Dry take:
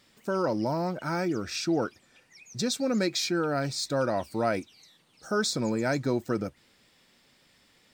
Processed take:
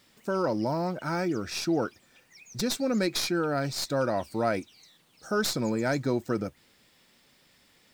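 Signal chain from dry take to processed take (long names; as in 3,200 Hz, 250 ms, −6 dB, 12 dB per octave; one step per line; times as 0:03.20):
stylus tracing distortion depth 0.04 ms
bit-depth reduction 12 bits, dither triangular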